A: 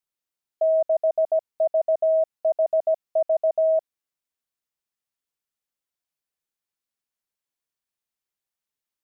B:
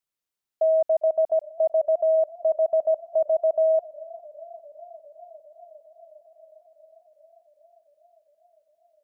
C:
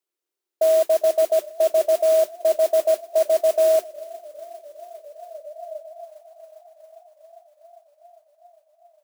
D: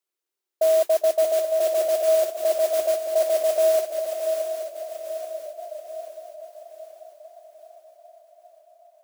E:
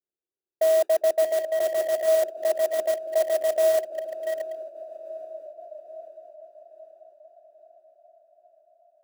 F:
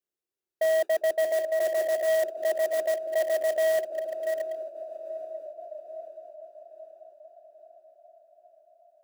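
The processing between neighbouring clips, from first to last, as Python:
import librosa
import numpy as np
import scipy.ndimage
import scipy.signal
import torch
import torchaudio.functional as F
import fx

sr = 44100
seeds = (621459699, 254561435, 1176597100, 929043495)

y1 = fx.echo_warbled(x, sr, ms=403, feedback_pct=79, rate_hz=2.8, cents=70, wet_db=-22.5)
y2 = fx.mod_noise(y1, sr, seeds[0], snr_db=15)
y2 = fx.filter_sweep_highpass(y2, sr, from_hz=360.0, to_hz=770.0, start_s=4.76, end_s=6.09, q=5.6)
y3 = fx.highpass(y2, sr, hz=420.0, slope=6)
y3 = fx.echo_swing(y3, sr, ms=832, ratio=3, feedback_pct=43, wet_db=-7.0)
y4 = fx.wiener(y3, sr, points=41)
y5 = 10.0 ** (-21.5 / 20.0) * np.tanh(y4 / 10.0 ** (-21.5 / 20.0))
y5 = y5 * librosa.db_to_amplitude(1.0)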